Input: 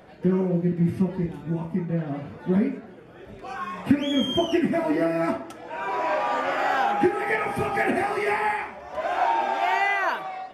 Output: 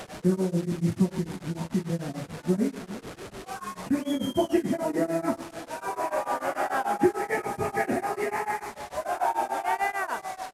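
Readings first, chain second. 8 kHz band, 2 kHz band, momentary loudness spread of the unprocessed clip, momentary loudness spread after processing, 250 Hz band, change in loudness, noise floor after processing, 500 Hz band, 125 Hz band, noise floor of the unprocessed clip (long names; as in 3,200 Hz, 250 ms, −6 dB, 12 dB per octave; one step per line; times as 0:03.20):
+6.5 dB, −6.5 dB, 10 LU, 10 LU, −3.0 dB, −4.0 dB, −48 dBFS, −2.5 dB, −3.0 dB, −45 dBFS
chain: linear delta modulator 64 kbit/s, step −32 dBFS
dynamic equaliser 3,000 Hz, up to −8 dB, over −43 dBFS, Q 0.88
single-tap delay 341 ms −15.5 dB
tremolo along a rectified sine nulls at 6.8 Hz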